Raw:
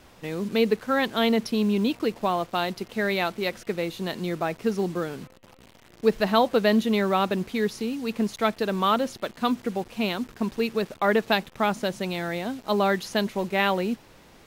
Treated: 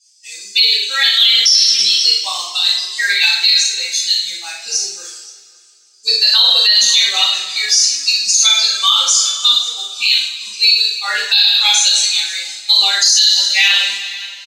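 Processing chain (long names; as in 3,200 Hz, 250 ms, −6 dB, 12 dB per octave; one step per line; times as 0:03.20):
spectral dynamics exaggerated over time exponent 2
flat-topped band-pass 5,500 Hz, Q 1.9
0:01.78–0:03.30: compressor whose output falls as the input rises −54 dBFS, ratio −0.5
reverse bouncing-ball delay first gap 40 ms, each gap 1.5×, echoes 5
reverb reduction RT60 0.87 s
coupled-rooms reverb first 0.5 s, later 2.6 s, from −19 dB, DRR −9.5 dB
boost into a limiter +34 dB
level −1 dB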